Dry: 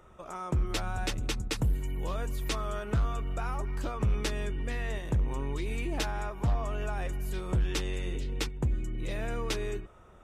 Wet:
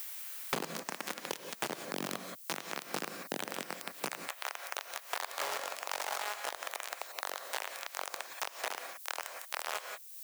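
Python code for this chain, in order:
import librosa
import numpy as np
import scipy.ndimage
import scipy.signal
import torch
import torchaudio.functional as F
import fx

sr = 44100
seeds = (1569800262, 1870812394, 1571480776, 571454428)

y = fx.halfwave_hold(x, sr)
y = fx.quant_dither(y, sr, seeds[0], bits=12, dither='none')
y = fx.peak_eq(y, sr, hz=3800.0, db=-9.0, octaves=0.86)
y = fx.resonator_bank(y, sr, root=49, chord='minor', decay_s=0.54)
y = y + 10.0 ** (-22.5 / 20.0) * np.pad(y, (int(238 * sr / 1000.0), 0))[:len(y)]
y = fx.rider(y, sr, range_db=10, speed_s=0.5)
y = scipy.signal.sosfilt(scipy.signal.butter(4, 7600.0, 'lowpass', fs=sr, output='sos'), y)
y = fx.quant_companded(y, sr, bits=2)
y = fx.dmg_noise_colour(y, sr, seeds[1], colour='violet', level_db=-62.0)
y = fx.highpass(y, sr, hz=fx.steps((0.0, 180.0), (4.1, 590.0)), slope=24)
y = fx.rev_gated(y, sr, seeds[2], gate_ms=200, shape='rising', drr_db=8.0)
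y = fx.band_squash(y, sr, depth_pct=100)
y = y * librosa.db_to_amplitude(3.0)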